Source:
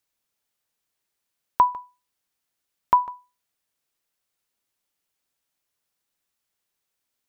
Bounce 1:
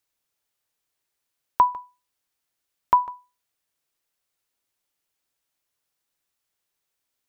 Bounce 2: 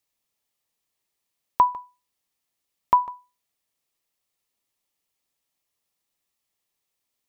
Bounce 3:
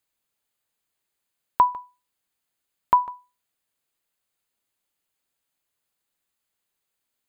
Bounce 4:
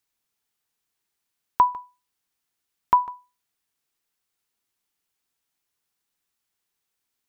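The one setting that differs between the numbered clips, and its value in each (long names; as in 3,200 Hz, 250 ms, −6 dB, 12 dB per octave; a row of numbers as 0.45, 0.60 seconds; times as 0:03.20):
notch filter, centre frequency: 210, 1,500, 5,600, 580 Hertz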